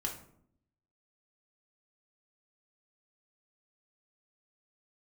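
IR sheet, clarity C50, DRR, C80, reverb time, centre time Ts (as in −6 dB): 8.0 dB, −1.0 dB, 12.0 dB, 0.65 s, 22 ms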